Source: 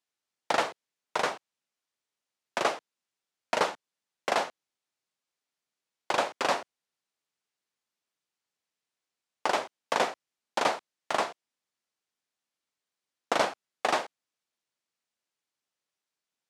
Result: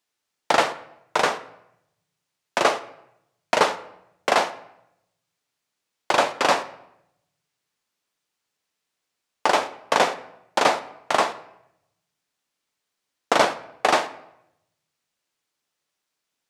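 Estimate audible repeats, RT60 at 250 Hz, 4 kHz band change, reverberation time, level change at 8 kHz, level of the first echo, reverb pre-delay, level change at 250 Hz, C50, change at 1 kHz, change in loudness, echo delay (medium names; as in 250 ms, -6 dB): no echo, 0.95 s, +8.0 dB, 0.80 s, +8.0 dB, no echo, 7 ms, +8.0 dB, 15.0 dB, +8.0 dB, +7.5 dB, no echo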